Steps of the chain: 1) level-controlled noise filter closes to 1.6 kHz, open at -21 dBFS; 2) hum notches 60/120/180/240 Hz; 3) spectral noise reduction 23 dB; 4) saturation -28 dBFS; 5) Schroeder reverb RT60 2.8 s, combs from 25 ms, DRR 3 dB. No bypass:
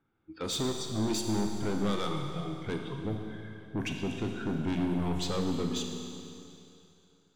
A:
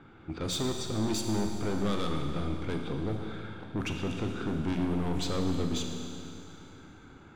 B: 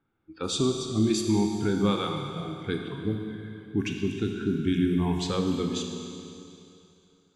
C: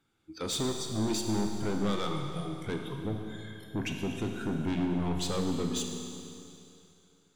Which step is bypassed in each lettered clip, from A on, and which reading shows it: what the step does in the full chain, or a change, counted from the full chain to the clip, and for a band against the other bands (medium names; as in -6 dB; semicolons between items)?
3, momentary loudness spread change +3 LU; 4, distortion -8 dB; 1, 8 kHz band +2.0 dB